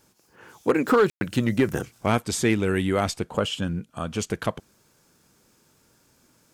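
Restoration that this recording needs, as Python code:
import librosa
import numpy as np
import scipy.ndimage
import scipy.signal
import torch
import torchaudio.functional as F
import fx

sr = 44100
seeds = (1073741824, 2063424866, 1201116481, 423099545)

y = fx.fix_declip(x, sr, threshold_db=-11.5)
y = fx.fix_ambience(y, sr, seeds[0], print_start_s=4.74, print_end_s=5.24, start_s=1.1, end_s=1.21)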